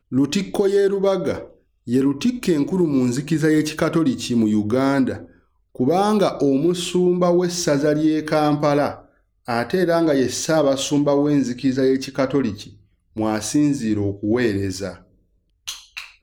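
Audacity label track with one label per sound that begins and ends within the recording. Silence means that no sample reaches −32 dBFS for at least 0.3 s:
1.870000	5.250000	sound
5.750000	8.990000	sound
9.480000	12.670000	sound
13.160000	14.960000	sound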